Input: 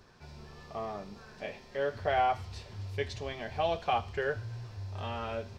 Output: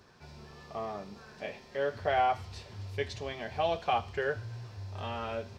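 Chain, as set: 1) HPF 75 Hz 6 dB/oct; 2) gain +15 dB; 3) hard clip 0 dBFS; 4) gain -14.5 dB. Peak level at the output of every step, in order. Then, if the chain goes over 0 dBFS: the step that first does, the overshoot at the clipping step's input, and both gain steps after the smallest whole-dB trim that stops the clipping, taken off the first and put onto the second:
-17.0, -2.0, -2.0, -16.5 dBFS; no overload

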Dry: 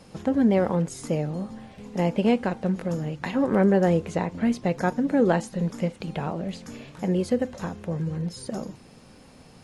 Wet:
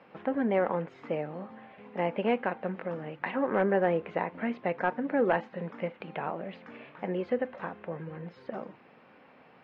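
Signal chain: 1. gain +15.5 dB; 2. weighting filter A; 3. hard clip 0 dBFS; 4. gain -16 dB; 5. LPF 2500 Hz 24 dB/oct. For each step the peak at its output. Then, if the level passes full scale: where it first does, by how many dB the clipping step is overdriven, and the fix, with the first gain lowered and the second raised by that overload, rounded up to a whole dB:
+5.5, +5.5, 0.0, -16.0, -15.0 dBFS; step 1, 5.5 dB; step 1 +9.5 dB, step 4 -10 dB

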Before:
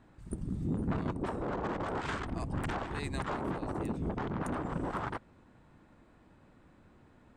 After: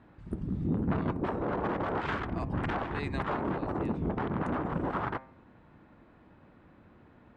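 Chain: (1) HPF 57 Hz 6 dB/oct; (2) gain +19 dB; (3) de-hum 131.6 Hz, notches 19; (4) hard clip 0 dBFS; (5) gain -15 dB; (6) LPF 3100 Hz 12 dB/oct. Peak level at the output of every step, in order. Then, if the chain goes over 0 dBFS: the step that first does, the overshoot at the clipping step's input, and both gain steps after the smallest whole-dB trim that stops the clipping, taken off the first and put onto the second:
-21.5, -2.5, -3.0, -3.0, -18.0, -18.0 dBFS; no overload

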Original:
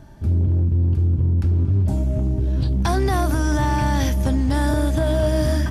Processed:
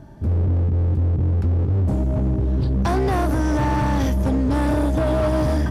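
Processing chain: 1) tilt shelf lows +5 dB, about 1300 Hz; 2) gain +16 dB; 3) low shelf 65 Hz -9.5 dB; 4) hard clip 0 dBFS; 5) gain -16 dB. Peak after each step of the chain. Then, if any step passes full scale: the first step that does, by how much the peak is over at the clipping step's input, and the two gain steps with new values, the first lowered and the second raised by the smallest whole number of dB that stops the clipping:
-7.0, +9.0, +8.0, 0.0, -16.0 dBFS; step 2, 8.0 dB; step 2 +8 dB, step 5 -8 dB

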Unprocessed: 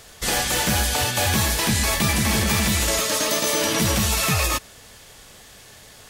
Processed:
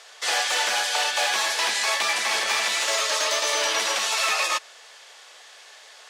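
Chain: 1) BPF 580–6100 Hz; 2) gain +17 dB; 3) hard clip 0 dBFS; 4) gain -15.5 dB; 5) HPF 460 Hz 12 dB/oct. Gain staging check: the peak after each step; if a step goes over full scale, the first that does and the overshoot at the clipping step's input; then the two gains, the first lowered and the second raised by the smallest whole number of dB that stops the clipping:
-11.0, +6.0, 0.0, -15.5, -11.5 dBFS; step 2, 6.0 dB; step 2 +11 dB, step 4 -9.5 dB

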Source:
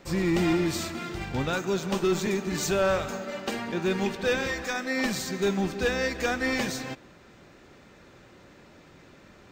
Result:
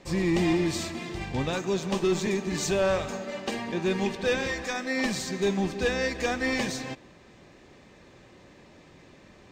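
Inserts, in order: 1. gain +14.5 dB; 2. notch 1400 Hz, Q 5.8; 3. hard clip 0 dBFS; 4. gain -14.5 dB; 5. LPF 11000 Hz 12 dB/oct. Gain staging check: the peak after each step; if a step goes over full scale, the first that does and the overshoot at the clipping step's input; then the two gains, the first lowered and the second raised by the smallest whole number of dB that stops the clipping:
-2.5, -2.0, -2.0, -16.5, -16.5 dBFS; no overload

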